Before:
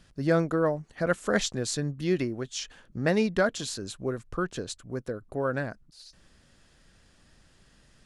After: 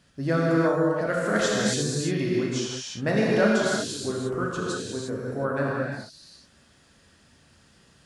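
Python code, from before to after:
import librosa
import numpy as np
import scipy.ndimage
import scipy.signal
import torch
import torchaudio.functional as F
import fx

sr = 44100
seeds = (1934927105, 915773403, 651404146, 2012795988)

y = scipy.signal.sosfilt(scipy.signal.butter(2, 72.0, 'highpass', fs=sr, output='sos'), x)
y = fx.rev_gated(y, sr, seeds[0], gate_ms=380, shape='flat', drr_db=-5.0)
y = y * librosa.db_to_amplitude(-2.0)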